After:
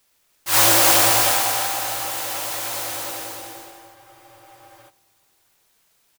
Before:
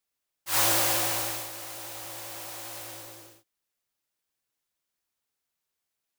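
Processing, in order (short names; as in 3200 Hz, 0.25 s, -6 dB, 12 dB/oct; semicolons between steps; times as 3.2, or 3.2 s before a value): G.711 law mismatch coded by mu; on a send: feedback echo 0.295 s, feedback 31%, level -6 dB; on the sum: digital reverb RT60 3.3 s, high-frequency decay 0.5×, pre-delay 70 ms, DRR 7 dB; spectral freeze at 3.97, 0.91 s; lo-fi delay 0.31 s, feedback 35%, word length 7-bit, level -9 dB; gain +8 dB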